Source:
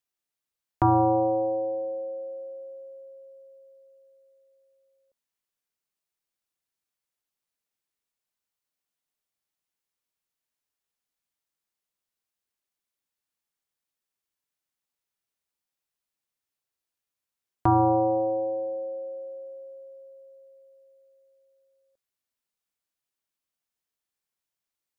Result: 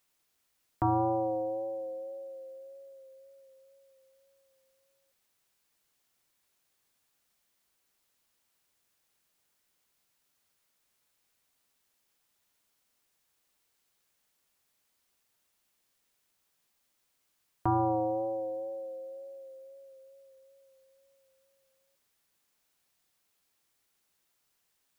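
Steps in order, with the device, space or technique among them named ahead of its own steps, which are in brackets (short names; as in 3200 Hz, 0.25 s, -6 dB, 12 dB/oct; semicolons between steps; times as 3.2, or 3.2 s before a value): plain cassette with noise reduction switched in (mismatched tape noise reduction decoder only; wow and flutter 29 cents; white noise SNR 36 dB); gain -7 dB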